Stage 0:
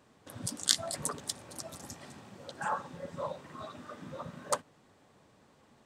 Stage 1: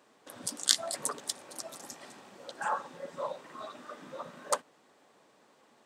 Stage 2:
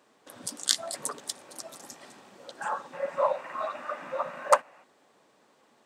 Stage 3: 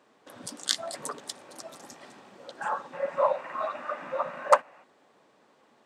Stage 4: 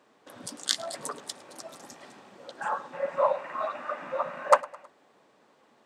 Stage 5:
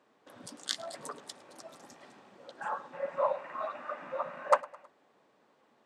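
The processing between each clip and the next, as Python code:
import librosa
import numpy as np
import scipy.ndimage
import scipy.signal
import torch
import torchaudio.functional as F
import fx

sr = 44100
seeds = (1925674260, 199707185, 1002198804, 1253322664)

y1 = scipy.signal.sosfilt(scipy.signal.butter(2, 310.0, 'highpass', fs=sr, output='sos'), x)
y1 = y1 * librosa.db_to_amplitude(1.5)
y2 = fx.spec_box(y1, sr, start_s=2.93, length_s=1.91, low_hz=510.0, high_hz=2900.0, gain_db=11)
y3 = fx.high_shelf(y2, sr, hz=6000.0, db=-9.5)
y3 = y3 * librosa.db_to_amplitude(1.5)
y4 = fx.echo_feedback(y3, sr, ms=106, feedback_pct=49, wet_db=-22)
y5 = fx.high_shelf(y4, sr, hz=5300.0, db=-5.5)
y5 = y5 * librosa.db_to_amplitude(-5.0)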